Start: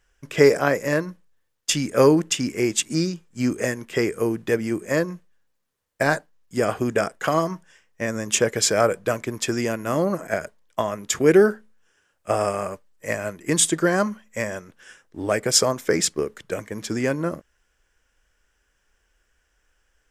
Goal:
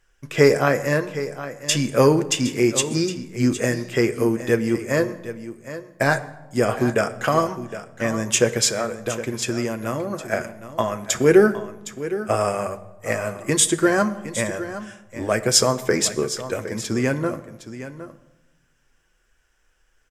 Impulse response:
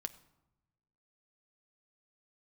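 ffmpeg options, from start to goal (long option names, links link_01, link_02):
-filter_complex "[0:a]asplit=3[link_01][link_02][link_03];[link_01]afade=type=out:start_time=8.69:duration=0.02[link_04];[link_02]acompressor=threshold=-24dB:ratio=6,afade=type=in:start_time=8.69:duration=0.02,afade=type=out:start_time=10.26:duration=0.02[link_05];[link_03]afade=type=in:start_time=10.26:duration=0.02[link_06];[link_04][link_05][link_06]amix=inputs=3:normalize=0,aecho=1:1:763:0.224[link_07];[1:a]atrim=start_sample=2205,asetrate=34839,aresample=44100[link_08];[link_07][link_08]afir=irnorm=-1:irlink=0,volume=2.5dB"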